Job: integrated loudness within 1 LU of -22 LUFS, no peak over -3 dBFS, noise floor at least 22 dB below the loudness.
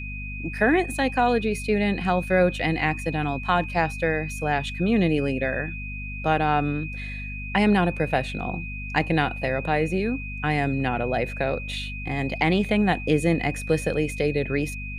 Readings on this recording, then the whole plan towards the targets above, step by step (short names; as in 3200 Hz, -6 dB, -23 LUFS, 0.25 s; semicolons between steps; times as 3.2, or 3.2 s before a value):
hum 50 Hz; harmonics up to 250 Hz; hum level -32 dBFS; steady tone 2500 Hz; tone level -35 dBFS; loudness -24.5 LUFS; peak -7.0 dBFS; loudness target -22.0 LUFS
-> de-hum 50 Hz, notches 5; notch 2500 Hz, Q 30; gain +2.5 dB